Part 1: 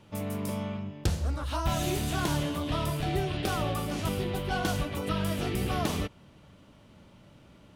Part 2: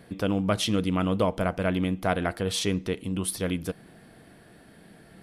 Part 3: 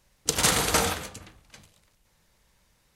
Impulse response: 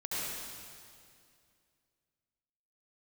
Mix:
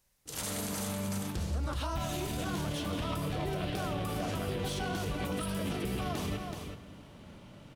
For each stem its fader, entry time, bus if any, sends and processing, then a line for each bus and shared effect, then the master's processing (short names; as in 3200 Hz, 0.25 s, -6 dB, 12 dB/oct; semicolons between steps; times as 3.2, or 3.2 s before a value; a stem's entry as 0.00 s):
+2.5 dB, 0.30 s, send -18.5 dB, echo send -10.5 dB, compressor 2.5:1, threshold -32 dBFS, peak gain reduction 7.5 dB
-19.5 dB, 2.15 s, send -13.5 dB, no echo send, sample leveller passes 3
-10.5 dB, 0.00 s, no send, echo send -8.5 dB, high shelf 8000 Hz +11.5 dB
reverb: on, RT60 2.3 s, pre-delay 64 ms
echo: echo 0.377 s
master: limiter -26 dBFS, peak gain reduction 16 dB